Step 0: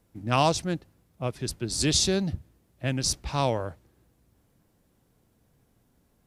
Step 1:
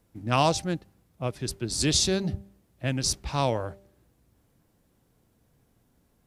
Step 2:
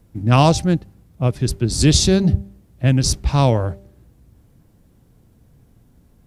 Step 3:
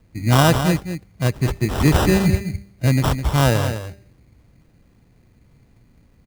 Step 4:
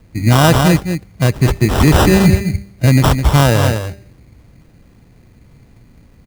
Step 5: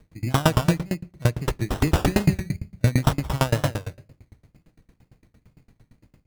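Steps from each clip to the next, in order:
de-hum 196.9 Hz, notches 4
bass shelf 270 Hz +11.5 dB; trim +5.5 dB
sample-rate reducer 2.2 kHz, jitter 0%; delay 208 ms -9 dB; trim -1.5 dB
loudness maximiser +9.5 dB; trim -1 dB
wow and flutter 100 cents; reverberation RT60 0.65 s, pre-delay 6 ms, DRR 13.5 dB; sawtooth tremolo in dB decaying 8.8 Hz, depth 28 dB; trim -3.5 dB

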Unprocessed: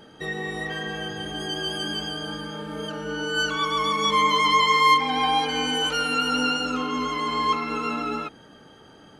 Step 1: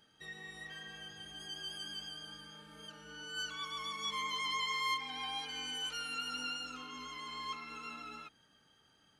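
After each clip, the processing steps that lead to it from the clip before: amplifier tone stack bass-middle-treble 5-5-5; trim -5.5 dB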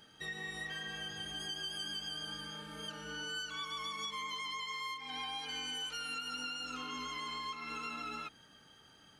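compression 12:1, threshold -45 dBFS, peak gain reduction 16 dB; trim +7.5 dB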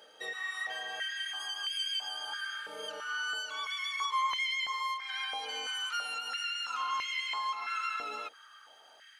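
step-sequenced high-pass 3 Hz 530–2300 Hz; trim +2 dB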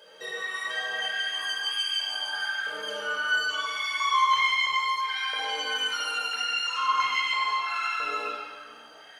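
reverberation RT60 1.8 s, pre-delay 26 ms, DRR -4 dB

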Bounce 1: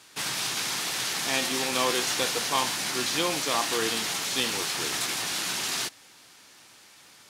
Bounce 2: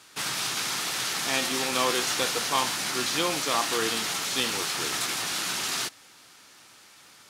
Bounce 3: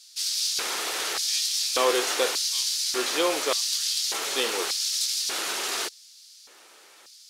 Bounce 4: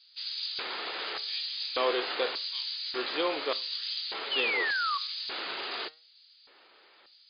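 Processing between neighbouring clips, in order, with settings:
peaking EQ 1.3 kHz +4 dB 0.3 oct
LFO high-pass square 0.85 Hz 430–4700 Hz
painted sound fall, 4.31–4.98 s, 1.1–3.1 kHz -25 dBFS; flange 0.33 Hz, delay 6 ms, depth 4.3 ms, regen +88%; MP3 40 kbps 11.025 kHz

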